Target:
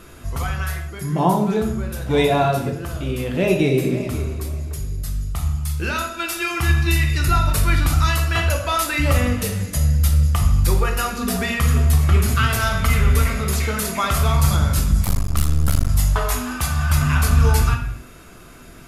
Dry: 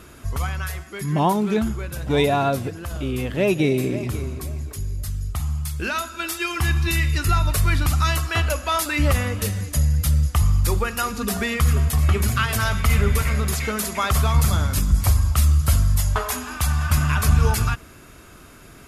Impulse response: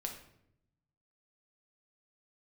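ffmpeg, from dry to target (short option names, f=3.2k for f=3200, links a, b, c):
-filter_complex "[0:a]asettb=1/sr,asplit=3[a][b][c];[a]atrim=end=0.854[d];[b]atrim=start=0.85:end=1.87,asetpts=PTS-STARTPTS,afade=t=in:d=0.004:c=qsin,afade=t=out:st=1.016:d=0.004:c=qsin,equalizer=f=2.5k:w=1.1:g=-6[e];[c]atrim=start=1.866[f];[d][e]acrossfade=d=0.004:c1=hsin:c2=qsin[g];[g][f]acrossfade=d=0.004:c1=qsin:c2=hsin[h];[1:a]atrim=start_sample=2205,afade=t=out:st=0.34:d=0.01,atrim=end_sample=15435[i];[h][i]afir=irnorm=-1:irlink=0,asettb=1/sr,asplit=3[j][k][l];[j]atrim=end=15.044[m];[k]atrim=start=15.04:end=15.89,asetpts=PTS-STARTPTS,afade=t=in:d=0.004:c=qsin,afade=t=out:st=0.846:d=0.004:c=qsin,aeval=exprs='max(val(0),0)':c=same[n];[l]atrim=start=15.886[o];[m][n]acrossfade=d=0.004:c1=hsin:c2=qsin[p];[p][o]acrossfade=d=0.004:c1=qsin:c2=hsin,volume=2.5dB"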